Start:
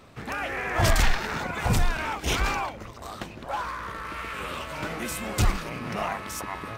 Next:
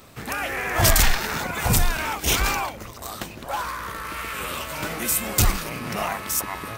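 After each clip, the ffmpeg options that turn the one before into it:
ffmpeg -i in.wav -af "aemphasis=mode=production:type=50fm,volume=2.5dB" out.wav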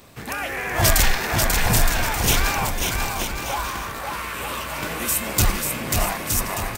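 ffmpeg -i in.wav -filter_complex "[0:a]bandreject=frequency=1300:width=17,asplit=2[link_01][link_02];[link_02]aecho=0:1:540|918|1183|1368|1497:0.631|0.398|0.251|0.158|0.1[link_03];[link_01][link_03]amix=inputs=2:normalize=0" out.wav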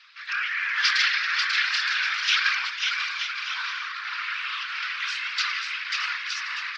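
ffmpeg -i in.wav -af "asuperpass=centerf=2600:order=12:qfactor=0.67,afftfilt=real='hypot(re,im)*cos(2*PI*random(0))':imag='hypot(re,im)*sin(2*PI*random(1))':win_size=512:overlap=0.75,volume=8.5dB" out.wav

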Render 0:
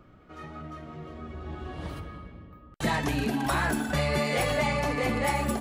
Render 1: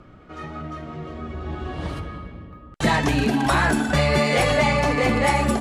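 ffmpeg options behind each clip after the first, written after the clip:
ffmpeg -i in.wav -af "lowpass=9300,volume=7.5dB" out.wav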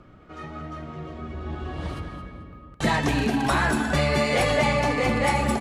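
ffmpeg -i in.wav -af "aecho=1:1:219|438|657:0.282|0.0648|0.0149,volume=-3dB" out.wav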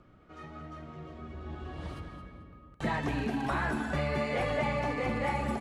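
ffmpeg -i in.wav -filter_complex "[0:a]acrossover=split=2800[link_01][link_02];[link_02]acompressor=threshold=-43dB:ratio=4:attack=1:release=60[link_03];[link_01][link_03]amix=inputs=2:normalize=0,volume=-8.5dB" out.wav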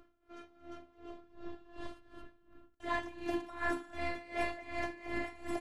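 ffmpeg -i in.wav -af "afftfilt=real='hypot(re,im)*cos(PI*b)':imag='0':win_size=512:overlap=0.75,aeval=exprs='val(0)*pow(10,-18*(0.5-0.5*cos(2*PI*2.7*n/s))/20)':channel_layout=same,volume=3dB" out.wav

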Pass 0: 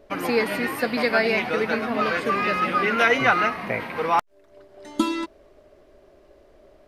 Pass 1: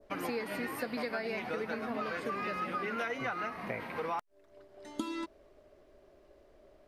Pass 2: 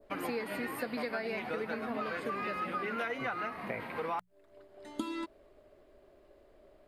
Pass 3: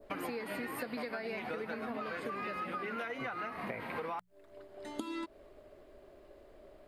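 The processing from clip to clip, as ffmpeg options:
ffmpeg -i in.wav -af "adynamicequalizer=threshold=0.0158:dfrequency=2900:dqfactor=0.98:tfrequency=2900:tqfactor=0.98:attack=5:release=100:ratio=0.375:range=2:mode=cutabove:tftype=bell,acompressor=threshold=-25dB:ratio=6,volume=-7.5dB" out.wav
ffmpeg -i in.wav -af "equalizer=frequency=5800:width_type=o:width=0.32:gain=-8.5,bandreject=frequency=60:width_type=h:width=6,bandreject=frequency=120:width_type=h:width=6,bandreject=frequency=180:width_type=h:width=6" out.wav
ffmpeg -i in.wav -af "acompressor=threshold=-41dB:ratio=4,volume=4dB" out.wav

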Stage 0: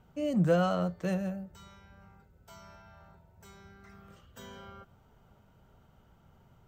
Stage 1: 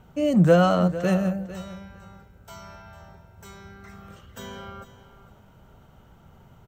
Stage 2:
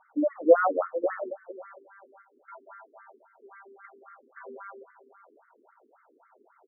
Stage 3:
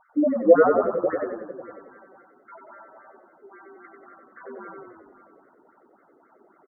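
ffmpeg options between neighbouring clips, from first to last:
ffmpeg -i in.wav -af "bandreject=frequency=4800:width=19,aecho=1:1:451|902:0.178|0.0267,volume=9dB" out.wav
ffmpeg -i in.wav -af "afftfilt=real='re*between(b*sr/1024,320*pow(1600/320,0.5+0.5*sin(2*PI*3.7*pts/sr))/1.41,320*pow(1600/320,0.5+0.5*sin(2*PI*3.7*pts/sr))*1.41)':imag='im*between(b*sr/1024,320*pow(1600/320,0.5+0.5*sin(2*PI*3.7*pts/sr))/1.41,320*pow(1600/320,0.5+0.5*sin(2*PI*3.7*pts/sr))*1.41)':win_size=1024:overlap=0.75,volume=2dB" out.wav
ffmpeg -i in.wav -filter_complex "[0:a]lowshelf=frequency=370:gain=9,asplit=2[link_01][link_02];[link_02]asplit=7[link_03][link_04][link_05][link_06][link_07][link_08][link_09];[link_03]adelay=93,afreqshift=-32,volume=-4.5dB[link_10];[link_04]adelay=186,afreqshift=-64,volume=-9.9dB[link_11];[link_05]adelay=279,afreqshift=-96,volume=-15.2dB[link_12];[link_06]adelay=372,afreqshift=-128,volume=-20.6dB[link_13];[link_07]adelay=465,afreqshift=-160,volume=-25.9dB[link_14];[link_08]adelay=558,afreqshift=-192,volume=-31.3dB[link_15];[link_09]adelay=651,afreqshift=-224,volume=-36.6dB[link_16];[link_10][link_11][link_12][link_13][link_14][link_15][link_16]amix=inputs=7:normalize=0[link_17];[link_01][link_17]amix=inputs=2:normalize=0" out.wav

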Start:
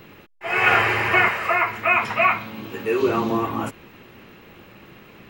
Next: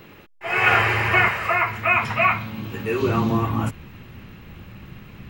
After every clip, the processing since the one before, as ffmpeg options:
ffmpeg -i in.wav -af "asubboost=boost=6.5:cutoff=160" out.wav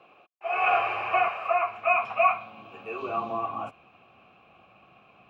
ffmpeg -i in.wav -filter_complex "[0:a]asplit=3[link_01][link_02][link_03];[link_01]bandpass=frequency=730:width_type=q:width=8,volume=0dB[link_04];[link_02]bandpass=frequency=1090:width_type=q:width=8,volume=-6dB[link_05];[link_03]bandpass=frequency=2440:width_type=q:width=8,volume=-9dB[link_06];[link_04][link_05][link_06]amix=inputs=3:normalize=0,volume=4dB" out.wav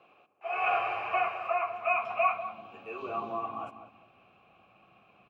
ffmpeg -i in.wav -filter_complex "[0:a]asplit=2[link_01][link_02];[link_02]adelay=195,lowpass=frequency=840:poles=1,volume=-8dB,asplit=2[link_03][link_04];[link_04]adelay=195,lowpass=frequency=840:poles=1,volume=0.33,asplit=2[link_05][link_06];[link_06]adelay=195,lowpass=frequency=840:poles=1,volume=0.33,asplit=2[link_07][link_08];[link_08]adelay=195,lowpass=frequency=840:poles=1,volume=0.33[link_09];[link_01][link_03][link_05][link_07][link_09]amix=inputs=5:normalize=0,volume=-5dB" out.wav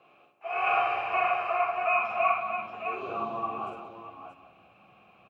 ffmpeg -i in.wav -af "aecho=1:1:46|60|98|178|626|637:0.668|0.501|0.266|0.2|0.299|0.376" out.wav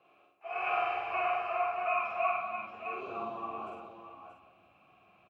ffmpeg -i in.wav -filter_complex "[0:a]asplit=2[link_01][link_02];[link_02]adelay=49,volume=-4dB[link_03];[link_01][link_03]amix=inputs=2:normalize=0,volume=-6.5dB" out.wav

